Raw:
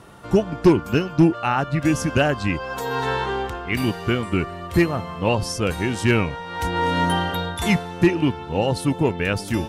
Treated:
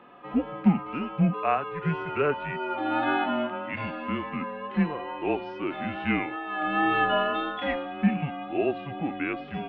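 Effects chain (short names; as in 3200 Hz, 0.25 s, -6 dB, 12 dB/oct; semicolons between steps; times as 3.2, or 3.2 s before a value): 6.32–7.64 comb 4.9 ms, depth 53%; wow and flutter 27 cents; mistuned SSB -150 Hz 370–3200 Hz; harmonic-percussive split percussive -14 dB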